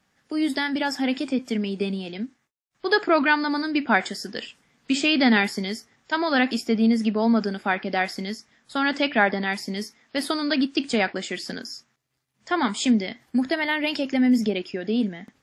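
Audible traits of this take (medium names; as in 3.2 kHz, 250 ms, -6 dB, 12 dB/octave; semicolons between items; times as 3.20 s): noise floor -71 dBFS; spectral tilt -4.5 dB/octave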